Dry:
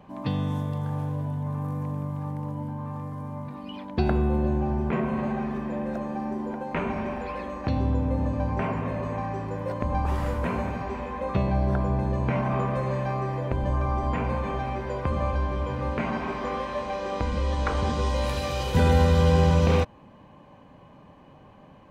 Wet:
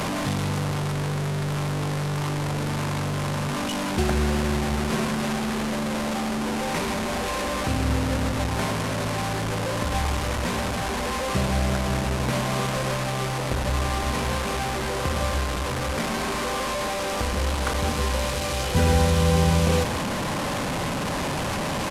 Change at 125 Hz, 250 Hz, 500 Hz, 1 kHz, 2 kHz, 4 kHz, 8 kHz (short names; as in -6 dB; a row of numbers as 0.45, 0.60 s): +1.0 dB, +2.0 dB, +1.5 dB, +3.0 dB, +8.0 dB, +11.0 dB, n/a